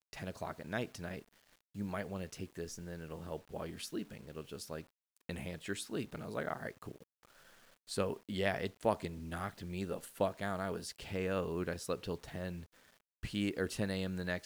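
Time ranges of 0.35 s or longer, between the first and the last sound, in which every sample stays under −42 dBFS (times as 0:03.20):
0:01.19–0:01.76
0:04.82–0:05.29
0:06.96–0:07.89
0:12.62–0:13.23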